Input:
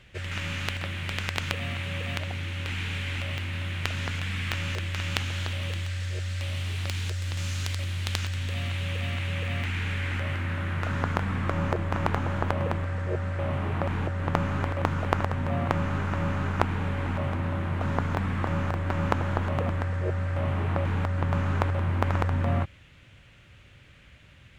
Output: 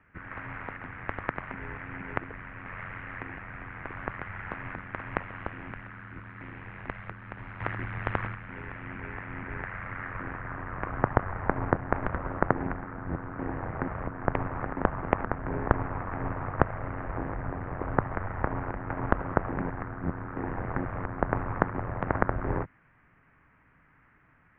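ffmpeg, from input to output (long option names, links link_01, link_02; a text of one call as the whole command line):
ffmpeg -i in.wav -filter_complex "[0:a]asettb=1/sr,asplit=3[link_01][link_02][link_03];[link_01]atrim=end=7.604[link_04];[link_02]atrim=start=7.6:end=8.35,asetpts=PTS-STARTPTS,afade=type=in:duration=0.004:curve=qsin,afade=type=out:start_time=0.746:duration=0.004:curve=qsin,acontrast=29[link_05];[link_03]atrim=start=8.346[link_06];[link_04][link_05]acrossfade=duration=0.004:curve1=hsin:curve2=qsin[link_07];[link_07][link_06]acrossfade=duration=0.004:curve1=qsin:curve2=hsin,aeval=exprs='0.891*(cos(1*acos(clip(val(0)/0.891,-1,1)))-cos(1*PI/2))+0.112*(cos(3*acos(clip(val(0)/0.891,-1,1)))-cos(3*PI/2))+0.282*(cos(6*acos(clip(val(0)/0.891,-1,1)))-cos(6*PI/2))':channel_layout=same,highpass=frequency=170:width_type=q:width=0.5412,highpass=frequency=170:width_type=q:width=1.307,lowpass=frequency=2200:width_type=q:width=0.5176,lowpass=frequency=2200:width_type=q:width=0.7071,lowpass=frequency=2200:width_type=q:width=1.932,afreqshift=-290,volume=1.5dB" out.wav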